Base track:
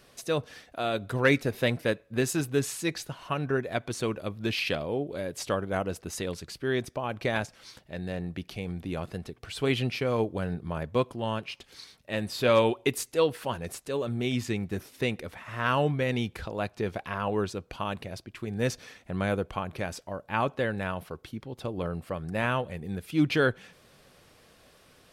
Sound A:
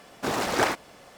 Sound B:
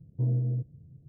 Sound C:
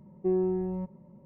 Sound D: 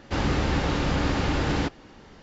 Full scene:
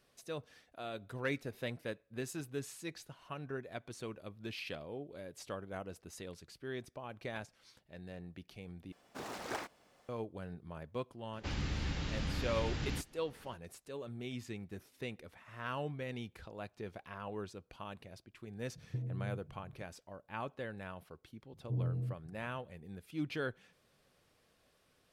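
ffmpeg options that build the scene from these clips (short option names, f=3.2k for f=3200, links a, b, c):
-filter_complex "[2:a]asplit=2[a][b];[0:a]volume=-14dB[c];[4:a]acrossover=split=210|1800[d][e][f];[e]acompressor=threshold=-42dB:ratio=3:attack=58:release=615:knee=2.83:detection=peak[g];[d][g][f]amix=inputs=3:normalize=0[h];[a]acompressor=threshold=-40dB:ratio=4:attack=87:release=58:knee=1:detection=peak[i];[c]asplit=2[j][k];[j]atrim=end=8.924[l];[1:a]atrim=end=1.17,asetpts=PTS-STARTPTS,volume=-17dB[m];[k]atrim=start=10.086[n];[h]atrim=end=2.22,asetpts=PTS-STARTPTS,volume=-10.5dB,afade=t=in:d=0.004:c=hsin,afade=t=out:st=2.216:d=0.004:c=hsin,adelay=11330[o];[i]atrim=end=1.08,asetpts=PTS-STARTPTS,volume=-4dB,afade=t=in:d=0.004:c=hsin,afade=t=out:st=1.076:d=0.004:c=hsin,adelay=18750[p];[b]atrim=end=1.08,asetpts=PTS-STARTPTS,volume=-8.5dB,afade=t=in:d=0.004:c=hsin,afade=t=out:st=1.076:d=0.004:c=hsin,adelay=21510[q];[l][m]acrossfade=d=0.004:c1=hsin:c2=hsin[r];[r][n]acrossfade=d=0.004:c1=hsin:c2=hsin[s];[s][o][p][q]amix=inputs=4:normalize=0"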